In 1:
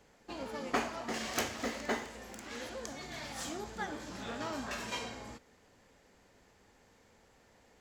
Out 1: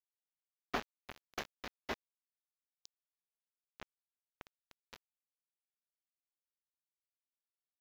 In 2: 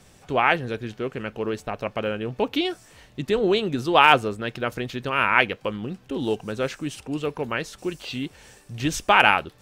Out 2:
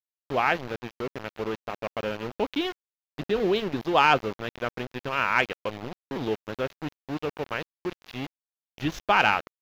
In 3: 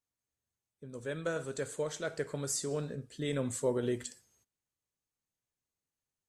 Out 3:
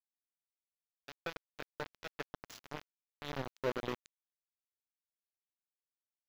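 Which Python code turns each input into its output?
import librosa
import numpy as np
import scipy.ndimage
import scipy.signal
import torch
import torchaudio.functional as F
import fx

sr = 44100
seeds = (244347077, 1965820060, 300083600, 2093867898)

y = np.where(np.abs(x) >= 10.0 ** (-27.5 / 20.0), x, 0.0)
y = scipy.signal.lfilter(np.full(5, 1.0 / 5), 1.0, y)
y = 10.0 ** (-3.5 / 20.0) * np.tanh(y / 10.0 ** (-3.5 / 20.0))
y = y * 10.0 ** (-3.0 / 20.0)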